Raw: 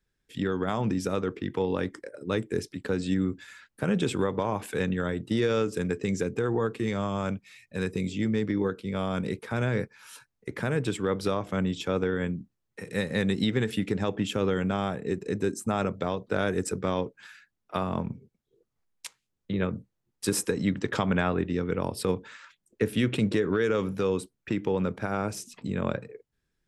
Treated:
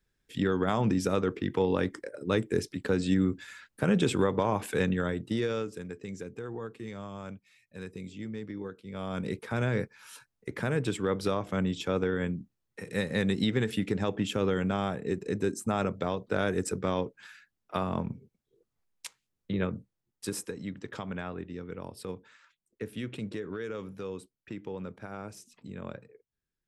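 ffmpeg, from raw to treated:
-af "volume=11dB,afade=t=out:st=4.78:d=1.05:silence=0.237137,afade=t=in:st=8.85:d=0.53:silence=0.316228,afade=t=out:st=19.52:d=1.05:silence=0.316228"

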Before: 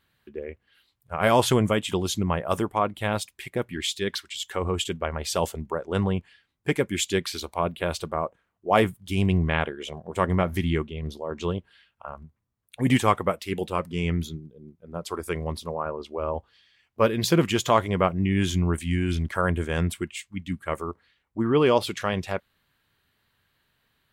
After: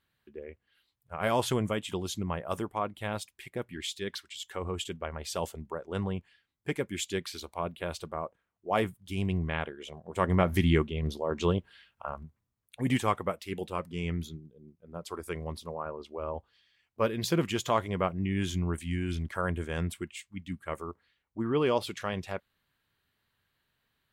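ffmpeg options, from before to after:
-af "volume=1dB,afade=t=in:st=10.02:d=0.61:silence=0.354813,afade=t=out:st=12.06:d=0.82:silence=0.398107"

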